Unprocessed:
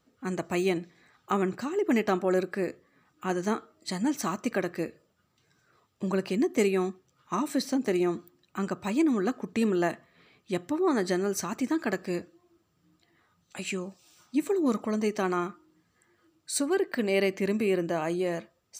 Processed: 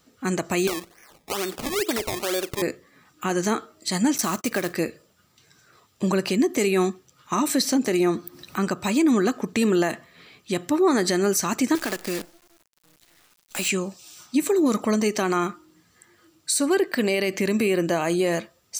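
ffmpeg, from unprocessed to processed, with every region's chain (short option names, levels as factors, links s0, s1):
-filter_complex "[0:a]asettb=1/sr,asplit=3[s0][s1][s2];[s0]atrim=end=0.674[s3];[s1]atrim=start=0.67:end=2.62,asetpts=PTS-STARTPTS,afade=t=in:d=0.004:c=qsin,afade=t=out:st=1.946:d=0.004:c=qsin,highpass=400,lowpass=3300,acrusher=samples=21:mix=1:aa=0.000001:lfo=1:lforange=21:lforate=2.2[s4];[s2]atrim=start=2.616[s5];[s3][s4]acrossfade=d=0.004:c1=hsin:c2=qsin[s6];[s6][s5]acrossfade=d=0.004:c1=qsin:c2=hsin,asettb=1/sr,asplit=3[s7][s8][s9];[s7]atrim=end=4.184[s10];[s8]atrim=start=4.18:end=4.74,asetpts=PTS-STARTPTS,afade=t=in:d=0.004:c=qsin,afade=t=out:st=0.556:d=0.004:c=qsin,agate=range=0.0251:threshold=0.00562:ratio=16:release=100:detection=peak,acrusher=bits=4:mode=log:mix=0:aa=0.000001[s11];[s9]atrim=start=4.736[s12];[s10][s11]acrossfade=d=0.004:c1=hsin:c2=qsin[s13];[s13][s12]acrossfade=d=0.004:c1=qsin:c2=hsin,asettb=1/sr,asplit=3[s14][s15][s16];[s14]atrim=end=7.984[s17];[s15]atrim=start=7.98:end=8.7,asetpts=PTS-STARTPTS,afade=t=in:d=0.004:c=qsin,afade=t=out:st=0.716:d=0.004:c=qsin,equalizer=f=3000:w=4.4:g=-5,bandreject=f=7200:w=6.4,acompressor=mode=upward:threshold=0.00891:ratio=2.5:attack=3.2:release=140:knee=2.83:detection=peak[s18];[s16]atrim=start=8.696[s19];[s17][s18]acrossfade=d=0.004:c1=hsin:c2=qsin[s20];[s20][s19]acrossfade=d=0.004:c1=qsin:c2=hsin,asettb=1/sr,asplit=3[s21][s22][s23];[s21]atrim=end=11.754[s24];[s22]atrim=start=11.75:end=13.69,asetpts=PTS-STARTPTS,afade=t=in:d=0.004:c=qsin,afade=t=out:st=1.936:d=0.004:c=qsin,highpass=170,acompressor=threshold=0.0282:ratio=6:attack=3.2:release=140:knee=1:detection=peak,acrusher=bits=8:dc=4:mix=0:aa=0.000001[s25];[s23]atrim=start=13.686[s26];[s24][s25]acrossfade=d=0.004:c1=hsin:c2=qsin[s27];[s27][s26]acrossfade=d=0.004:c1=qsin:c2=hsin,highshelf=f=2800:g=8.5,alimiter=limit=0.1:level=0:latency=1:release=75,volume=2.37"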